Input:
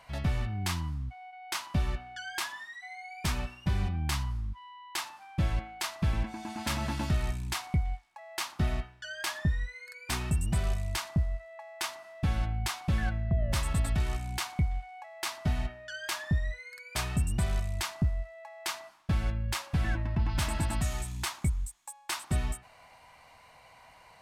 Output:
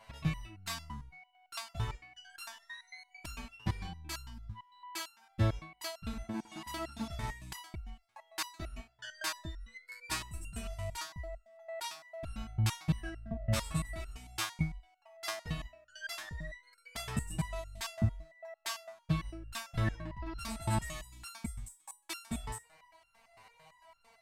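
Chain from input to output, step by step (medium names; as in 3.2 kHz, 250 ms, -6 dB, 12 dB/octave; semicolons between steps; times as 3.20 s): 2.68–3.09 s: rippled EQ curve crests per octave 1.5, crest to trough 15 dB; transient shaper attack +2 dB, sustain -2 dB; resonator arpeggio 8.9 Hz 110–1400 Hz; trim +8.5 dB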